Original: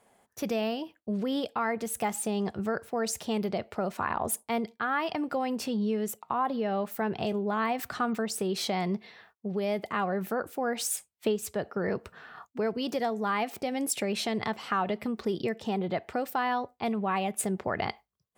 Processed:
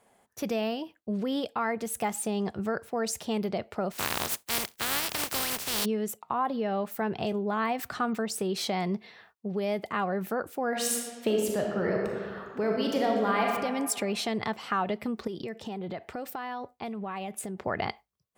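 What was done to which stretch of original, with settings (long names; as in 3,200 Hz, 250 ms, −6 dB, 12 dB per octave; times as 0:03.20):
0:03.91–0:05.84: compressing power law on the bin magnitudes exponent 0.18
0:10.67–0:13.49: thrown reverb, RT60 1.8 s, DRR −0.5 dB
0:15.27–0:17.62: downward compressor, threshold −32 dBFS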